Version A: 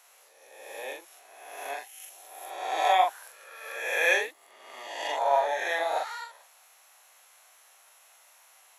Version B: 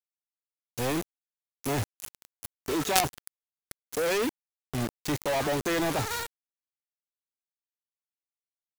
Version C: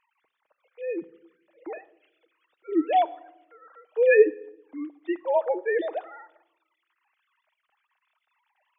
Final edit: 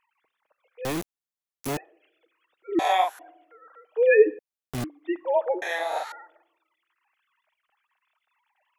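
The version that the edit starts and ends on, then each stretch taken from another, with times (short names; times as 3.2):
C
0.85–1.77 from B
2.79–3.19 from A
4.39–4.84 from B
5.62–6.12 from A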